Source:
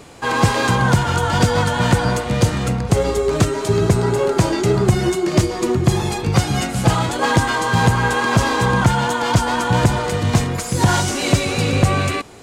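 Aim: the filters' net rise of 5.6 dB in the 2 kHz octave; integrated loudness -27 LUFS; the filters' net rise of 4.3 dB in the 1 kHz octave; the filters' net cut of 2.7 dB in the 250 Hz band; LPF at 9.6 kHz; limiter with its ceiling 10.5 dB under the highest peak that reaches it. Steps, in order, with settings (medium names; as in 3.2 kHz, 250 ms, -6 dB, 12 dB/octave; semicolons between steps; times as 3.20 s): low-pass 9.6 kHz; peaking EQ 250 Hz -4.5 dB; peaking EQ 1 kHz +4 dB; peaking EQ 2 kHz +6 dB; trim -7 dB; peak limiter -18 dBFS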